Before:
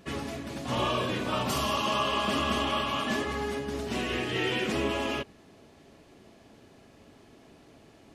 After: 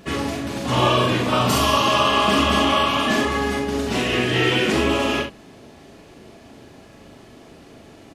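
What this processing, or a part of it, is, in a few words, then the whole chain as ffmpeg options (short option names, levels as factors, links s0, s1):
slapback doubling: -filter_complex "[0:a]asplit=3[s0][s1][s2];[s1]adelay=40,volume=0.596[s3];[s2]adelay=65,volume=0.376[s4];[s0][s3][s4]amix=inputs=3:normalize=0,volume=2.66"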